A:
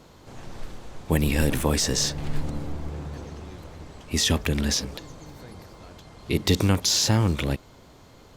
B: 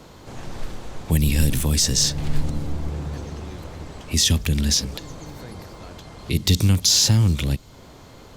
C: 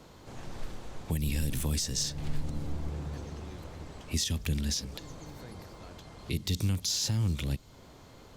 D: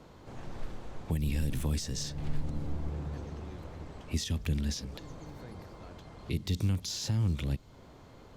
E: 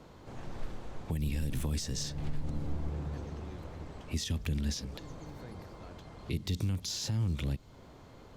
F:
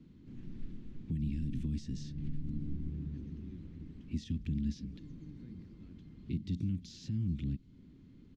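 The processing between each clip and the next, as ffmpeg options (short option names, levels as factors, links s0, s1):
-filter_complex "[0:a]acrossover=split=210|3000[s0][s1][s2];[s1]acompressor=threshold=0.00794:ratio=3[s3];[s0][s3][s2]amix=inputs=3:normalize=0,volume=2"
-af "alimiter=limit=0.251:level=0:latency=1:release=295,volume=0.398"
-af "highshelf=f=3300:g=-9"
-af "alimiter=limit=0.0631:level=0:latency=1:release=94"
-af "firequalizer=gain_entry='entry(120,0);entry(180,7);entry(270,6);entry(470,-15);entry(670,-25);entry(1900,-10);entry(2800,-8);entry(6800,-15);entry(12000,-29)':delay=0.05:min_phase=1,volume=0.596"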